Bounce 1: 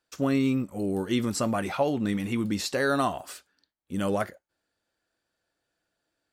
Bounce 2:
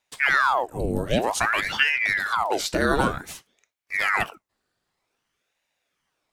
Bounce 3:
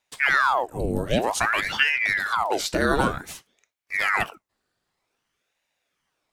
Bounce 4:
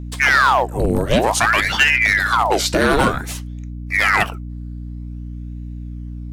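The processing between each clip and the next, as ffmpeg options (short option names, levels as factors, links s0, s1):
-af "afreqshift=-67,aeval=exprs='val(0)*sin(2*PI*1200*n/s+1200*0.9/0.53*sin(2*PI*0.53*n/s))':c=same,volume=2.11"
-af anull
-filter_complex "[0:a]aeval=exprs='val(0)+0.0158*(sin(2*PI*60*n/s)+sin(2*PI*2*60*n/s)/2+sin(2*PI*3*60*n/s)/3+sin(2*PI*4*60*n/s)/4+sin(2*PI*5*60*n/s)/5)':c=same,acrossover=split=3800[s0][s1];[s0]asoftclip=type=hard:threshold=0.158[s2];[s2][s1]amix=inputs=2:normalize=0,volume=2.51"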